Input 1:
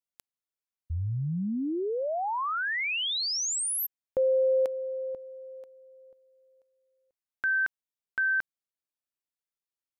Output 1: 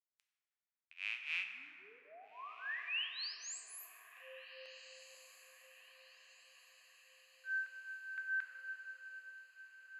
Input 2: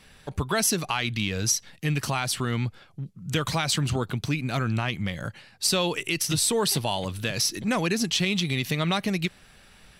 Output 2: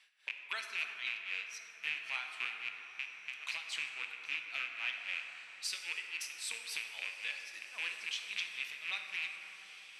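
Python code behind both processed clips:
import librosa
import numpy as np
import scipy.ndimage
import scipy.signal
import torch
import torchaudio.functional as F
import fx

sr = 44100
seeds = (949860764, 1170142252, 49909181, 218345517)

p1 = fx.rattle_buzz(x, sr, strikes_db=-33.0, level_db=-15.0)
p2 = fx.peak_eq(p1, sr, hz=3600.0, db=-12.5, octaves=2.9)
p3 = fx.rider(p2, sr, range_db=10, speed_s=2.0)
p4 = p2 + (p3 * librosa.db_to_amplitude(2.0))
p5 = fx.ladder_bandpass(p4, sr, hz=3100.0, resonance_pct=35)
p6 = p5 * (1.0 - 0.97 / 2.0 + 0.97 / 2.0 * np.cos(2.0 * np.pi * 3.7 * (np.arange(len(p5)) / sr)))
p7 = p6 + fx.echo_diffused(p6, sr, ms=1651, feedback_pct=52, wet_db=-14, dry=0)
p8 = fx.rev_plate(p7, sr, seeds[0], rt60_s=3.6, hf_ratio=0.35, predelay_ms=0, drr_db=3.0)
y = p8 * librosa.db_to_amplitude(3.5)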